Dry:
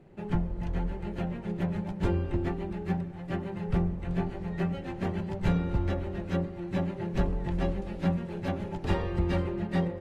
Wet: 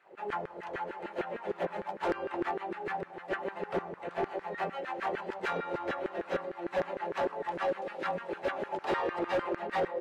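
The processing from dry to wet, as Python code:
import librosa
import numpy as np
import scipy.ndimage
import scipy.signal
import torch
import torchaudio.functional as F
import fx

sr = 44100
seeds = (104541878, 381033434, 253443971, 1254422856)

y = fx.filter_lfo_highpass(x, sr, shape='saw_down', hz=6.6, low_hz=390.0, high_hz=1700.0, q=2.9)
y = np.clip(y, -10.0 ** (-27.0 / 20.0), 10.0 ** (-27.0 / 20.0))
y = fx.high_shelf(y, sr, hz=4500.0, db=-8.0)
y = F.gain(torch.from_numpy(y), 2.0).numpy()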